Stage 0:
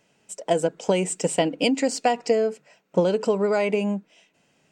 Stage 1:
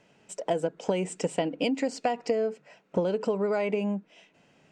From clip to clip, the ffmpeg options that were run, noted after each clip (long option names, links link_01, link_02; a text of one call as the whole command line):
ffmpeg -i in.wav -af "aemphasis=mode=reproduction:type=50fm,acompressor=threshold=-35dB:ratio=2,volume=3.5dB" out.wav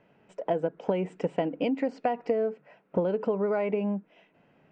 ffmpeg -i in.wav -af "lowpass=2000" out.wav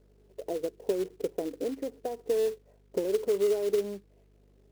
ffmpeg -i in.wav -af "bandpass=frequency=400:width_type=q:width=4.9:csg=0,aeval=exprs='val(0)+0.000562*(sin(2*PI*50*n/s)+sin(2*PI*2*50*n/s)/2+sin(2*PI*3*50*n/s)/3+sin(2*PI*4*50*n/s)/4+sin(2*PI*5*50*n/s)/5)':channel_layout=same,acrusher=bits=4:mode=log:mix=0:aa=0.000001,volume=4dB" out.wav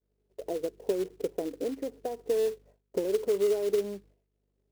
ffmpeg -i in.wav -af "agate=range=-33dB:threshold=-50dB:ratio=3:detection=peak" out.wav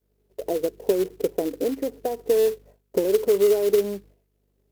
ffmpeg -i in.wav -af "equalizer=frequency=13000:width_type=o:width=0.35:gain=8,volume=7.5dB" out.wav